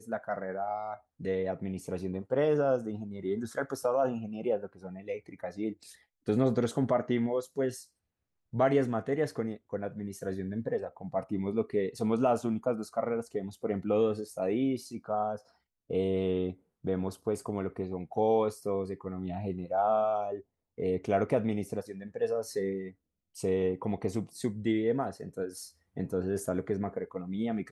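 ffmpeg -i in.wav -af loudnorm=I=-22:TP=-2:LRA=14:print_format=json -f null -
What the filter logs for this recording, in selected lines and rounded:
"input_i" : "-32.3",
"input_tp" : "-13.7",
"input_lra" : "3.1",
"input_thresh" : "-42.6",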